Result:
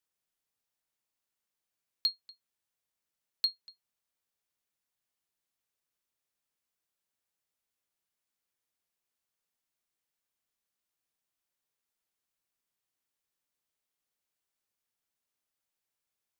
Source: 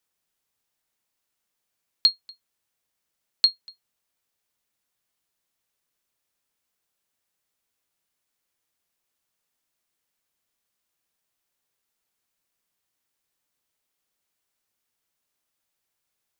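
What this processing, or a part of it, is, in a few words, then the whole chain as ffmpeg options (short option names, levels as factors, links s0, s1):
clipper into limiter: -af "asoftclip=type=hard:threshold=0.316,alimiter=limit=0.237:level=0:latency=1:release=67,volume=0.398"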